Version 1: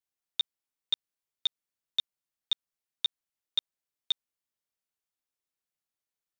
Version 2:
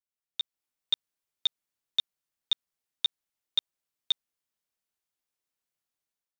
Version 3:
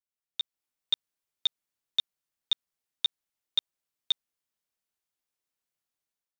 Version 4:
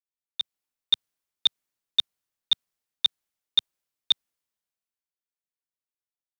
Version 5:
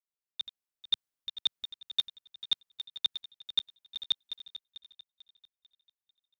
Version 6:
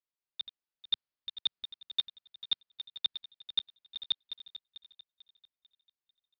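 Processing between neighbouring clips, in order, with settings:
automatic gain control gain up to 10 dB; level −8 dB
no processing that can be heard
multiband upward and downward expander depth 40%; level +4 dB
feedback delay that plays each chunk backwards 222 ms, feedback 62%, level −11 dB; level −7 dB
downsampling to 11,025 Hz; level −2 dB

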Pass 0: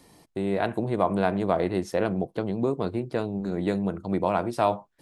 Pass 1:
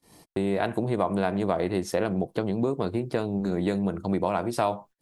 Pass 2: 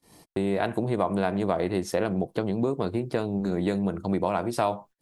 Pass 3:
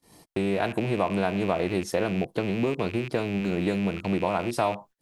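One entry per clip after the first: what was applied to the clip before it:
downward compressor 2.5 to 1, threshold −29 dBFS, peak gain reduction 8.5 dB; high-shelf EQ 5,700 Hz +5 dB; noise gate −53 dBFS, range −30 dB; level +5 dB
no processing that can be heard
loose part that buzzes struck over −37 dBFS, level −26 dBFS

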